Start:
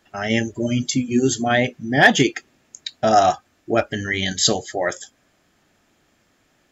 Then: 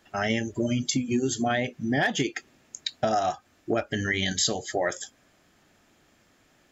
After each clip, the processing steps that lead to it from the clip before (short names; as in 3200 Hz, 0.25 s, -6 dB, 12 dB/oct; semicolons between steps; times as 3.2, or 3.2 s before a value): compressor 8:1, threshold -22 dBFS, peak gain reduction 14.5 dB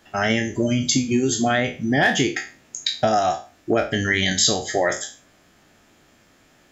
spectral trails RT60 0.35 s; gain +5 dB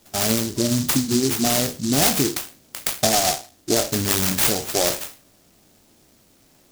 noise-modulated delay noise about 5600 Hz, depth 0.21 ms